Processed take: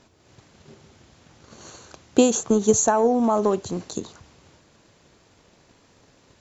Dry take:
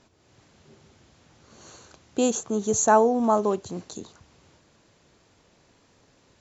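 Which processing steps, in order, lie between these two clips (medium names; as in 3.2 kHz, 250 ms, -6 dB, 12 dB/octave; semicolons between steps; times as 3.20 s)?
peak limiter -14.5 dBFS, peak gain reduction 8.5 dB; transient shaper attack +8 dB, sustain +3 dB; trim +3 dB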